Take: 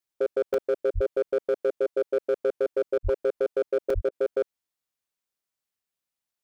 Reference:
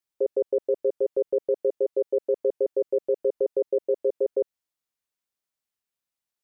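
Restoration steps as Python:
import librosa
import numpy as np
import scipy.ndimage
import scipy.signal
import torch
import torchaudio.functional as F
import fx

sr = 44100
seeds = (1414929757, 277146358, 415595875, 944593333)

y = fx.fix_declip(x, sr, threshold_db=-18.5)
y = fx.fix_deplosive(y, sr, at_s=(0.94, 3.03, 3.94))
y = fx.fix_interpolate(y, sr, at_s=(0.54, 1.87, 3.9), length_ms=3.4)
y = fx.fix_interpolate(y, sr, at_s=(2.98, 4.09), length_ms=26.0)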